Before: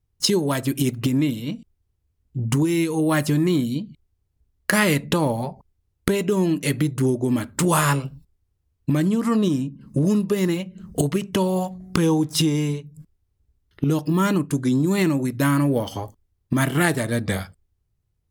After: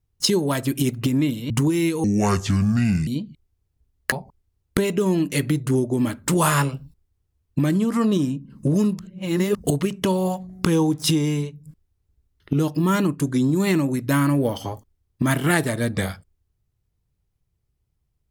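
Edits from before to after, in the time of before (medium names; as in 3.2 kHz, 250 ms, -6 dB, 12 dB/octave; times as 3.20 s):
1.50–2.45 s: delete
2.99–3.67 s: speed 66%
4.72–5.43 s: delete
10.30–10.86 s: reverse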